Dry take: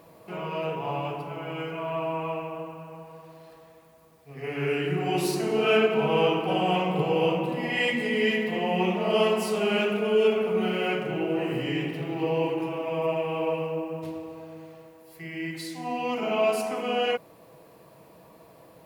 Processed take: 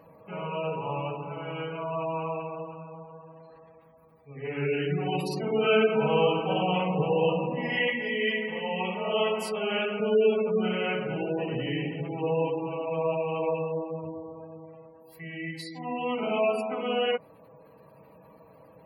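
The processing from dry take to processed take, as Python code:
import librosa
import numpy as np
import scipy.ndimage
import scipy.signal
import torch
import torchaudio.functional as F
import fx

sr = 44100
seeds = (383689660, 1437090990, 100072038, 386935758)

y = fx.low_shelf(x, sr, hz=290.0, db=-11.0, at=(7.89, 10.0))
y = fx.spec_gate(y, sr, threshold_db=-25, keep='strong')
y = fx.notch_comb(y, sr, f0_hz=350.0)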